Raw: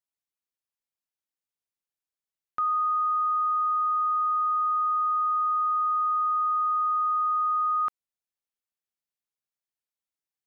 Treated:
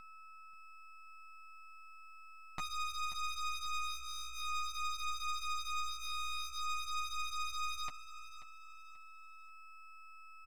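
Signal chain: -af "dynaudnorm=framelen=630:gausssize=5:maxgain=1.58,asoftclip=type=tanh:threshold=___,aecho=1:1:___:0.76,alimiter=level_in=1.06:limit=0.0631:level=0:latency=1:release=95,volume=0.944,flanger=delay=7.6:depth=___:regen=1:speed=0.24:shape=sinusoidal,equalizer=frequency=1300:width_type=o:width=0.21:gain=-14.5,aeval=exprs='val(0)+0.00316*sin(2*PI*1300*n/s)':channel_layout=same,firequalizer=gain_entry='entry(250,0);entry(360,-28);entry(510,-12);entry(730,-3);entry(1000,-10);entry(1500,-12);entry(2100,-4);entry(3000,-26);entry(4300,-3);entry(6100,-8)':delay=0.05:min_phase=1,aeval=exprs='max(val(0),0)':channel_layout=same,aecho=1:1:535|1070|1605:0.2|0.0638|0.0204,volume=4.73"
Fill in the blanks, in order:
0.0531, 6.5, 5.1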